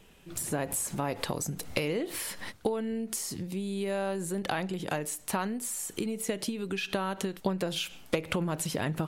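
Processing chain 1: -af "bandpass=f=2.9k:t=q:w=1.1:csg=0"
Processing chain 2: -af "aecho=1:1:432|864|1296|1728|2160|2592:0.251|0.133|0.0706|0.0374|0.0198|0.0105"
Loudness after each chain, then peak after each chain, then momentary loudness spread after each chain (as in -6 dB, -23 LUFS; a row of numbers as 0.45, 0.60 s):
-41.0, -32.5 LUFS; -15.5, -13.5 dBFS; 9, 3 LU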